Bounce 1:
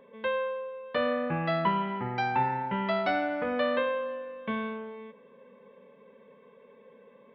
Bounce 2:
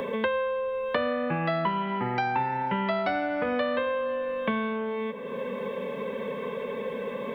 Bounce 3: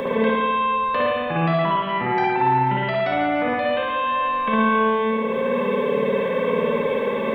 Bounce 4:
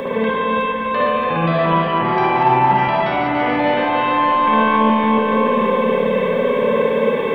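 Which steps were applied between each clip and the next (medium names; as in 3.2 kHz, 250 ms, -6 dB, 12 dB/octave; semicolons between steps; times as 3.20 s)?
three bands compressed up and down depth 100%; trim +1.5 dB
peak limiter -23.5 dBFS, peak gain reduction 9.5 dB; spring tank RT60 1.5 s, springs 54 ms, chirp 20 ms, DRR -5 dB; trim +5.5 dB
backward echo that repeats 144 ms, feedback 80%, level -5.5 dB; echo whose repeats swap between lows and highs 305 ms, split 860 Hz, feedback 75%, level -6 dB; trim +1 dB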